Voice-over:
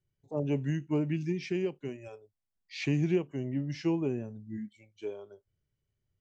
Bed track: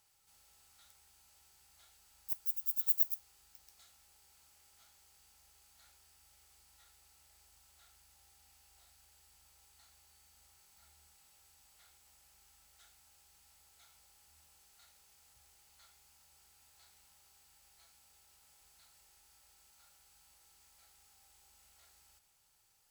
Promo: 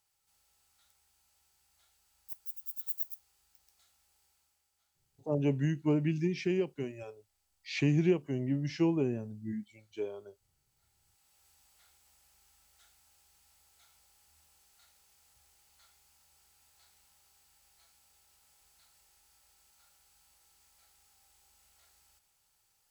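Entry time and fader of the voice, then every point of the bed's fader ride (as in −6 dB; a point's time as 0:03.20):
4.95 s, +1.0 dB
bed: 0:04.25 −6 dB
0:04.71 −14 dB
0:10.64 −14 dB
0:11.48 −1 dB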